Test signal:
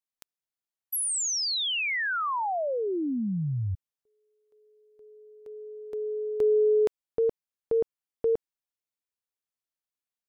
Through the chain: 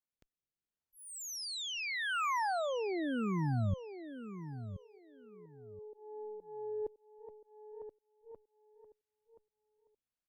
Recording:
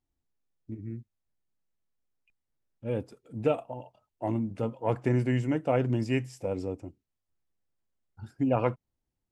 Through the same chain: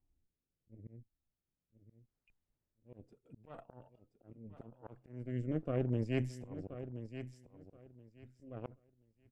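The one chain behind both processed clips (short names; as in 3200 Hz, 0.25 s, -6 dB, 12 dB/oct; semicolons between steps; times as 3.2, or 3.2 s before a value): tilt -2 dB/oct; reverse; compressor 5:1, threshold -31 dBFS; reverse; added harmonics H 3 -31 dB, 4 -8 dB, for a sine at -16 dBFS; rotary speaker horn 0.75 Hz; auto swell 0.683 s; on a send: feedback echo 1.027 s, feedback 20%, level -11 dB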